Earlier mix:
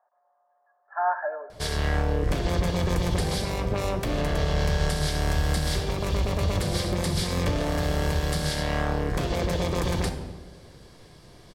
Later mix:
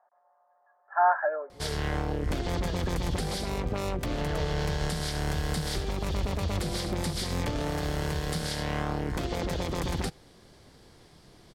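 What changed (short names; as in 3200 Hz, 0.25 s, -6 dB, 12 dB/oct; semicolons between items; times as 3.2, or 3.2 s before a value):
speech +4.5 dB; reverb: off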